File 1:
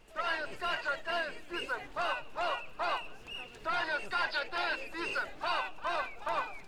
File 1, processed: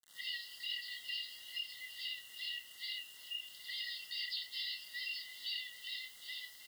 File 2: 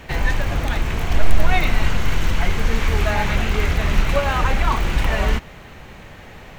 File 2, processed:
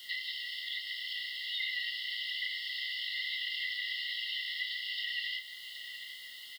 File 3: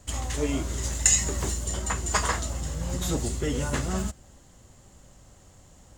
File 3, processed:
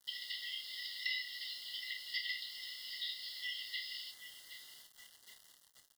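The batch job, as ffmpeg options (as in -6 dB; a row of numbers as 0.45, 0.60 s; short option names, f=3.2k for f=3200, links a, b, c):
-filter_complex "[0:a]asplit=2[a][b];[b]adelay=768,lowpass=f=2.7k:p=1,volume=-12.5dB,asplit=2[c][d];[d]adelay=768,lowpass=f=2.7k:p=1,volume=0.55,asplit=2[e][f];[f]adelay=768,lowpass=f=2.7k:p=1,volume=0.55,asplit=2[g][h];[h]adelay=768,lowpass=f=2.7k:p=1,volume=0.55,asplit=2[i][j];[j]adelay=768,lowpass=f=2.7k:p=1,volume=0.55,asplit=2[k][l];[l]adelay=768,lowpass=f=2.7k:p=1,volume=0.55[m];[a][c][e][g][i][k][m]amix=inputs=7:normalize=0,acrossover=split=3700[n][o];[o]acompressor=threshold=-41dB:ratio=4:attack=1:release=60[p];[n][p]amix=inputs=2:normalize=0,afftfilt=real='re*between(b*sr/4096,1900,5400)':imag='im*between(b*sr/4096,1900,5400)':win_size=4096:overlap=0.75,acrusher=bits=9:mix=0:aa=0.000001,asuperstop=centerf=2400:order=20:qfactor=3.5,highshelf=f=2.9k:g=7,asplit=2[q][r];[r]adelay=29,volume=-8dB[s];[q][s]amix=inputs=2:normalize=0,acompressor=threshold=-42dB:ratio=1.5"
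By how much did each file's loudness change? -6.5, -13.5, -14.0 LU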